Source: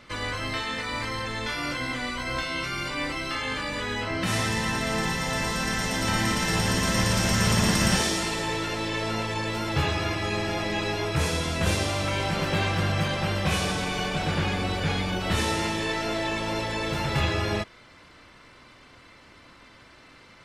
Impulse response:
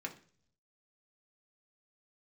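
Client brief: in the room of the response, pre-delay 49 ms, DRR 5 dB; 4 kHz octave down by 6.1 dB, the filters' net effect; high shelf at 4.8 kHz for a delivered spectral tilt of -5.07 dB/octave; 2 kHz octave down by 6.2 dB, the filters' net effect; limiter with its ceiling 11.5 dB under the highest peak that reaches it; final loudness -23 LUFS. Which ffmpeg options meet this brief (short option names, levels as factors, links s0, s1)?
-filter_complex "[0:a]equalizer=f=2000:t=o:g=-6,equalizer=f=4000:t=o:g=-3.5,highshelf=f=4800:g=-5,alimiter=limit=0.075:level=0:latency=1,asplit=2[s0][s1];[1:a]atrim=start_sample=2205,adelay=49[s2];[s1][s2]afir=irnorm=-1:irlink=0,volume=0.562[s3];[s0][s3]amix=inputs=2:normalize=0,volume=2.51"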